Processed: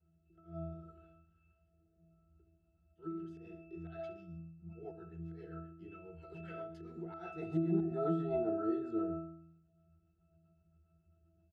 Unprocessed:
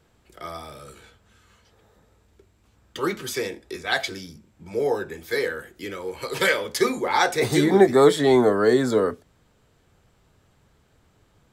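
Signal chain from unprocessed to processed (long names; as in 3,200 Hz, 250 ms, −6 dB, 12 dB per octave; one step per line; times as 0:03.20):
double-tracking delay 17 ms −8 dB
on a send: repeating echo 67 ms, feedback 40%, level −11 dB
on the sum: volume swells 125 ms
rotating-speaker cabinet horn 0.7 Hz, later 7.5 Hz, at 0:03.30
resonances in every octave E, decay 0.78 s
level +8 dB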